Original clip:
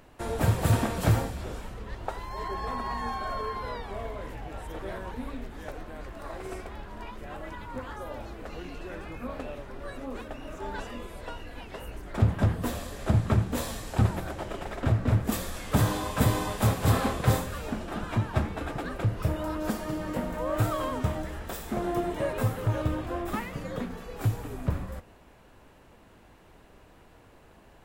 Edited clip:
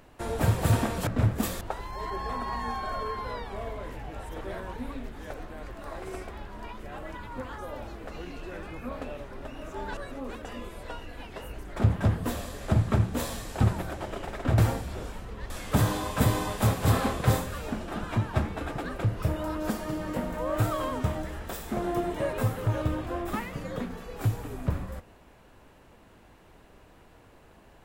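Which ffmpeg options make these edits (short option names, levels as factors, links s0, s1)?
-filter_complex "[0:a]asplit=8[s0][s1][s2][s3][s4][s5][s6][s7];[s0]atrim=end=1.072[s8];[s1]atrim=start=14.958:end=15.502[s9];[s2]atrim=start=1.988:end=9.832[s10];[s3]atrim=start=10.308:end=10.832[s11];[s4]atrim=start=9.828:end=10.312[s12];[s5]atrim=start=10.828:end=14.962[s13];[s6]atrim=start=1.068:end=1.992[s14];[s7]atrim=start=15.498[s15];[s8][s9]acrossfade=d=0.004:c1=hsin:c2=hsin[s16];[s16][s10]acrossfade=d=0.004:c1=hsin:c2=hsin[s17];[s17][s11]acrossfade=d=0.004:c1=hsin:c2=hsin[s18];[s18][s12]acrossfade=d=0.004:c1=hsin:c2=hsin[s19];[s19][s13]acrossfade=d=0.004:c1=hsin:c2=hsin[s20];[s20][s14]acrossfade=d=0.004:c1=hsin:c2=hsin[s21];[s21][s15]acrossfade=d=0.004:c1=hsin:c2=hsin"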